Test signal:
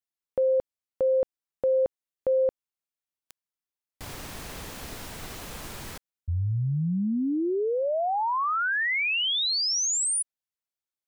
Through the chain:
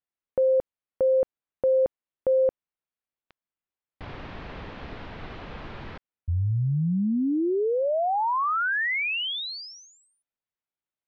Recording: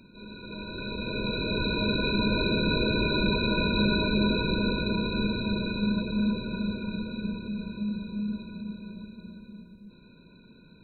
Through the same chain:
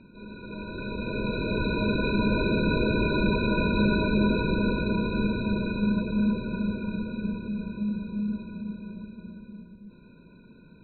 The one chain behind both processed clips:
Bessel low-pass filter 2,400 Hz, order 6
level +2 dB

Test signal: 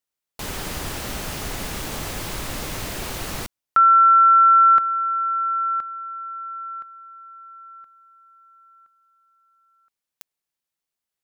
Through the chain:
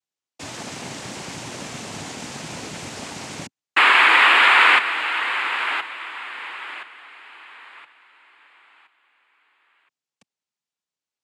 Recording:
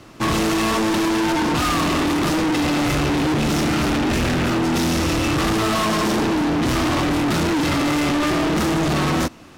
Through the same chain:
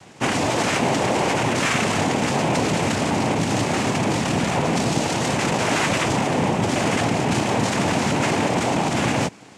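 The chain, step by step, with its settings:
cochlear-implant simulation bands 4
level −1 dB

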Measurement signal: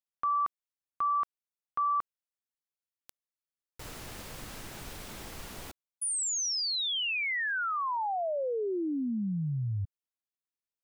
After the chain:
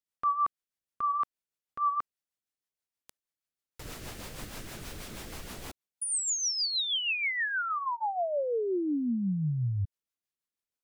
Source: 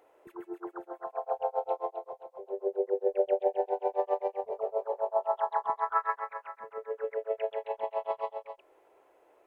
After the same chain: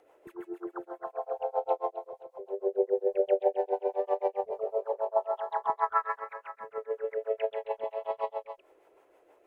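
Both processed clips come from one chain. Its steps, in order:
rotating-speaker cabinet horn 6.3 Hz
level +3.5 dB

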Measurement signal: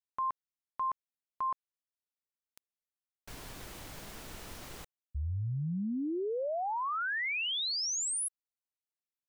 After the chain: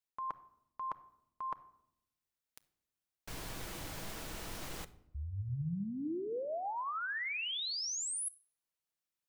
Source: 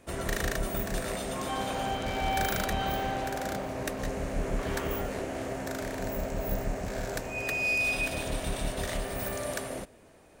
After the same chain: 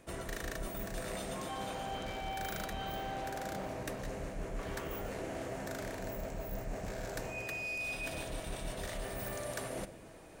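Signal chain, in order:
reversed playback
downward compressor 6 to 1, threshold −40 dBFS
reversed playback
rectangular room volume 2,200 cubic metres, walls furnished, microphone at 0.65 metres
level +2.5 dB

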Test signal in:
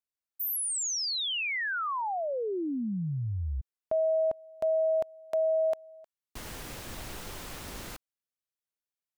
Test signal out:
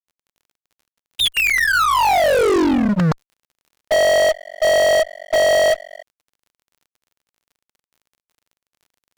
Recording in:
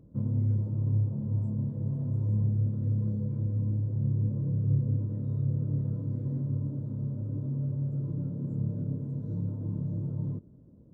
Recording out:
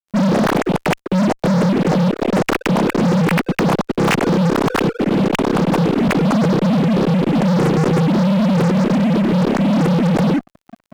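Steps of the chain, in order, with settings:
three sine waves on the formant tracks
fuzz pedal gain 41 dB, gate −48 dBFS
surface crackle 40 per second −45 dBFS

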